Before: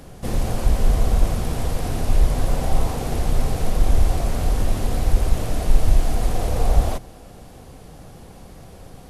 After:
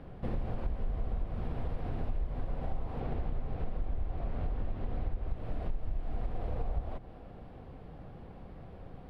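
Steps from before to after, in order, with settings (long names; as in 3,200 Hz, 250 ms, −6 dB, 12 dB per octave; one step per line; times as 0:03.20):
0:03.00–0:05.31: parametric band 9,300 Hz −12.5 dB 0.76 octaves
downward compressor 6 to 1, threshold −24 dBFS, peak gain reduction 16.5 dB
high-frequency loss of the air 440 metres
level −5.5 dB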